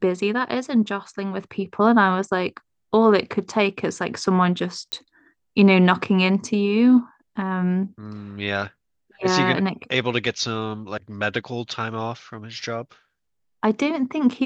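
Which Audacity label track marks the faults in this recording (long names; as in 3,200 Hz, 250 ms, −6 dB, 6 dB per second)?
4.920000	4.920000	click −13 dBFS
10.260000	10.260000	drop-out 3.9 ms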